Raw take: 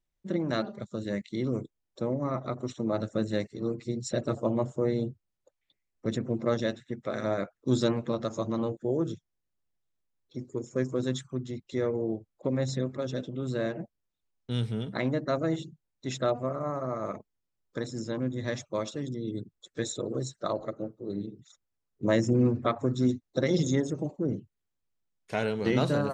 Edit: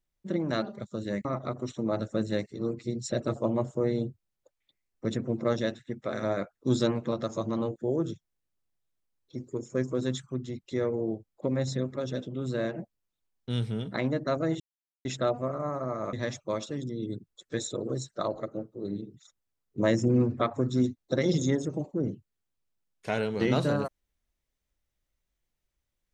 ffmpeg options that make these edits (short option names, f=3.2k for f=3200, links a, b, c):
-filter_complex "[0:a]asplit=5[a][b][c][d][e];[a]atrim=end=1.252[f];[b]atrim=start=2.258:end=15.61,asetpts=PTS-STARTPTS,afade=t=out:st=13.348:d=0.004:c=hsin[g];[c]atrim=start=15.61:end=16.06,asetpts=PTS-STARTPTS,volume=0[h];[d]atrim=start=16.06:end=17.142,asetpts=PTS-STARTPTS,afade=t=in:d=0.004:c=hsin[i];[e]atrim=start=18.378[j];[g][h][i]concat=n=3:v=0:a=1[k];[f][k]acrossfade=d=0.004:c1=hsin:c2=hsin[l];[l][j]acrossfade=d=0.004:c1=hsin:c2=hsin"